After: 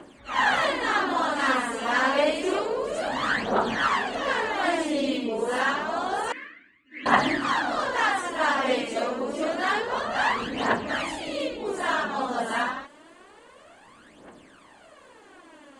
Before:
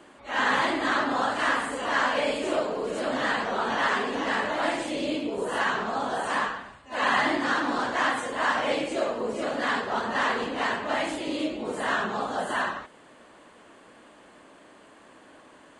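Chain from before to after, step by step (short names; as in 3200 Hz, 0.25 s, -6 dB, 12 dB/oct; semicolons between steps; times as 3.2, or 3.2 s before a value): phaser 0.28 Hz, delay 4.5 ms, feedback 66%; 6.32–7.06 double band-pass 810 Hz, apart 2.8 oct; gain -1 dB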